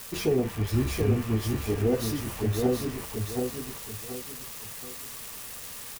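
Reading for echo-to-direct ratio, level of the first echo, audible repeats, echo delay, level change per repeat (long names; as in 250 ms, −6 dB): −4.0 dB, −4.5 dB, 3, 728 ms, −9.0 dB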